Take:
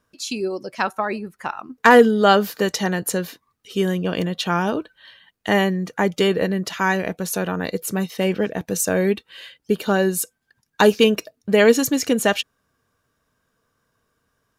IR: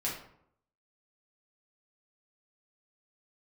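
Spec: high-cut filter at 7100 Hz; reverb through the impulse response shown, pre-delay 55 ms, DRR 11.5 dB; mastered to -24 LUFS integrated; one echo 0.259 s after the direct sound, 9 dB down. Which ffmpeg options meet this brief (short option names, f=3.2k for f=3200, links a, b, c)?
-filter_complex "[0:a]lowpass=7.1k,aecho=1:1:259:0.355,asplit=2[a][b];[1:a]atrim=start_sample=2205,adelay=55[c];[b][c]afir=irnorm=-1:irlink=0,volume=-16dB[d];[a][d]amix=inputs=2:normalize=0,volume=-4.5dB"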